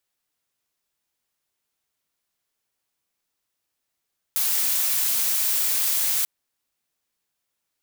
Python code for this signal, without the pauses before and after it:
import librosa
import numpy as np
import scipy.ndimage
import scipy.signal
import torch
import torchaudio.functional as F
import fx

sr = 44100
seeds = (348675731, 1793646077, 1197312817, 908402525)

y = fx.noise_colour(sr, seeds[0], length_s=1.89, colour='blue', level_db=-22.5)